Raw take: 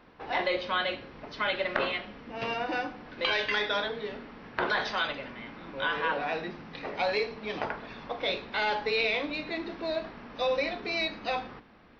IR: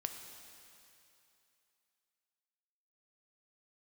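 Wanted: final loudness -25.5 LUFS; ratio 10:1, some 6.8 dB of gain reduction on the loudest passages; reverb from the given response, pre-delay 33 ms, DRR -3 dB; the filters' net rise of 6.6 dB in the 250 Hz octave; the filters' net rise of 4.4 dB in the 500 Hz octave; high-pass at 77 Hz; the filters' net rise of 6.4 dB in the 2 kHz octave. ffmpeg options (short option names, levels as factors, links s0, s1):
-filter_complex "[0:a]highpass=77,equalizer=f=250:t=o:g=7.5,equalizer=f=500:t=o:g=3,equalizer=f=2000:t=o:g=8,acompressor=threshold=0.0447:ratio=10,asplit=2[s0][s1];[1:a]atrim=start_sample=2205,adelay=33[s2];[s1][s2]afir=irnorm=-1:irlink=0,volume=1.5[s3];[s0][s3]amix=inputs=2:normalize=0,volume=1.19"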